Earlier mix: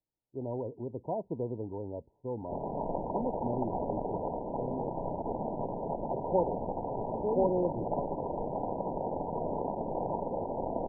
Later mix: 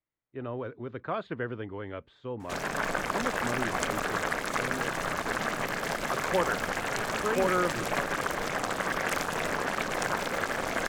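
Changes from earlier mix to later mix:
background: remove linear-phase brick-wall low-pass 3,100 Hz
master: remove linear-phase brick-wall band-stop 1,000–13,000 Hz

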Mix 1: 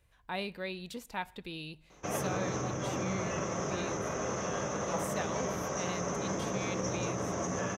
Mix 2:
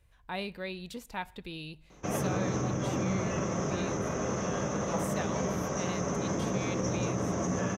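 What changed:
background: add parametric band 220 Hz +5 dB 1.6 octaves
master: add low-shelf EQ 100 Hz +7 dB

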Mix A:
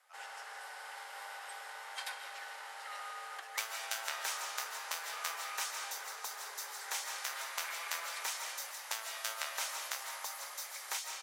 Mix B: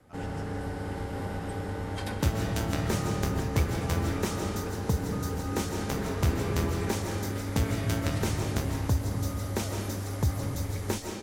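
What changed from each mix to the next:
second sound: entry −1.35 s
master: remove Bessel high-pass filter 1,200 Hz, order 6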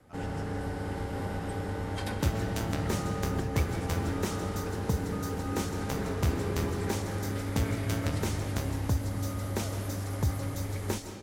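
second sound: send −7.5 dB

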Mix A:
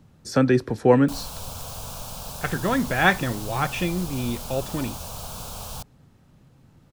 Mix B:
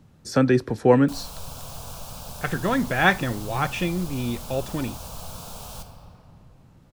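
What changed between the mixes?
background −7.0 dB
reverb: on, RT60 2.9 s

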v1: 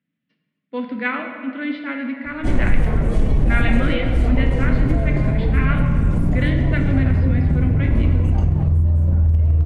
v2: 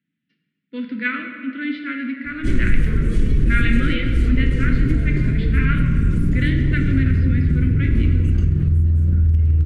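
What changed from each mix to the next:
master: add drawn EQ curve 390 Hz 0 dB, 820 Hz −27 dB, 1,400 Hz +1 dB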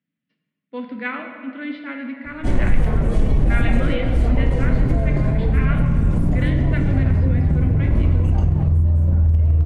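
speech −4.0 dB
master: remove drawn EQ curve 390 Hz 0 dB, 820 Hz −27 dB, 1,400 Hz +1 dB

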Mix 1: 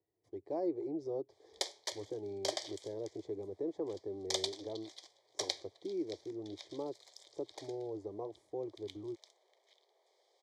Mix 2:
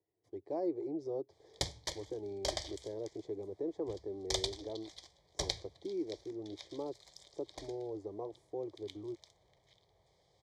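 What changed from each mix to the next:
background: remove Chebyshev high-pass filter 360 Hz, order 5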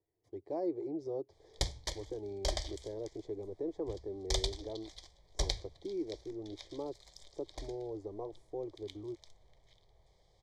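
master: remove high-pass filter 99 Hz 12 dB per octave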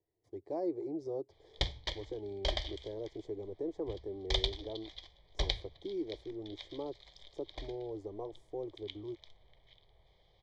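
background: add low-pass with resonance 3,100 Hz, resonance Q 2.7

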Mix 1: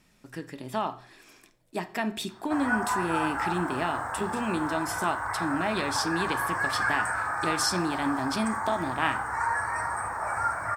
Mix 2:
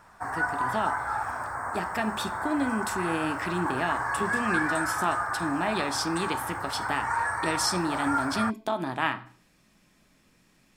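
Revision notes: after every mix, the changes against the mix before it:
background: entry −2.30 s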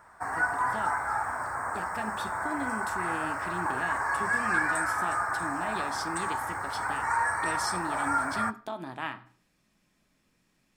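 speech −8.0 dB
background: send on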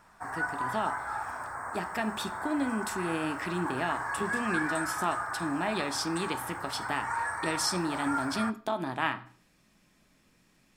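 speech +5.5 dB
background −5.0 dB

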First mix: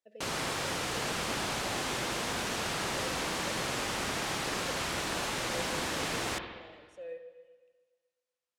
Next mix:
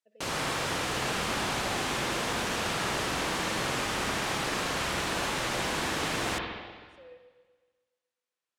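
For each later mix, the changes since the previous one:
speech −8.5 dB
background: send +7.0 dB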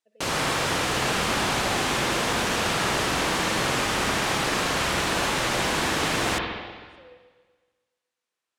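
background +6.0 dB

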